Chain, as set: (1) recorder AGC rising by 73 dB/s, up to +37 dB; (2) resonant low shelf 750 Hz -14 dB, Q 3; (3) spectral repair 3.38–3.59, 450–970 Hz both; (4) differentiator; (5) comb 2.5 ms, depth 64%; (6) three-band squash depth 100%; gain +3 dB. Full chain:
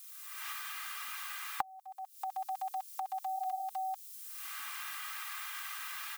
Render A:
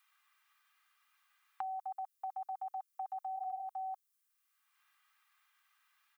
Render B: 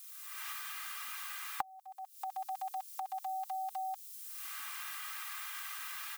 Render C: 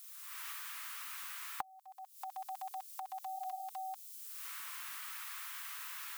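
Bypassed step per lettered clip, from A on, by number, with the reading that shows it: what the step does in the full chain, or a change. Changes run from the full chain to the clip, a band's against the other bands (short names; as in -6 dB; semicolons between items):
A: 1, crest factor change -5.5 dB; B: 3, 8 kHz band +1.5 dB; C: 5, 8 kHz band +3.5 dB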